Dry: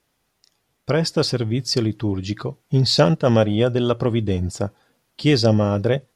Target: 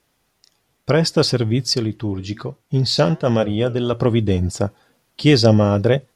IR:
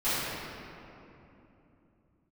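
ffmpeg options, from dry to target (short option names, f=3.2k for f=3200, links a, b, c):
-filter_complex "[0:a]asettb=1/sr,asplit=3[a][b][c];[a]atrim=end=1.734[d];[b]atrim=start=1.73:end=3.93,asetpts=PTS-STARTPTS,afade=t=in:d=0.004:c=qsin,afade=t=out:st=2.196:d=0.004:c=qsin,flanger=delay=4.3:depth=4.8:regen=-88:speed=1.2:shape=triangular[e];[c]atrim=start=3.926[f];[d][e]acrossfade=d=0.004:c1=hsin:c2=qsin[g];[g][f]acrossfade=d=0.004:c1=qsin:c2=hsin,volume=3.5dB"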